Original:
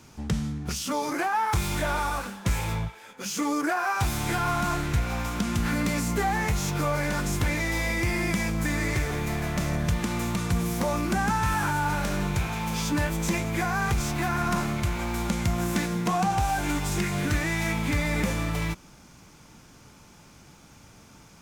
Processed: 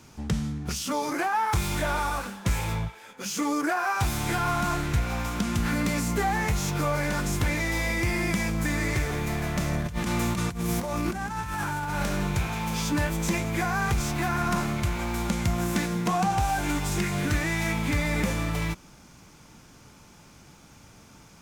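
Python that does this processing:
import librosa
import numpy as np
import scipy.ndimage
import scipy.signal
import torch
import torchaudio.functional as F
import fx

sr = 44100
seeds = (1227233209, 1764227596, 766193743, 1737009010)

y = fx.over_compress(x, sr, threshold_db=-28.0, ratio=-0.5, at=(9.81, 12.03))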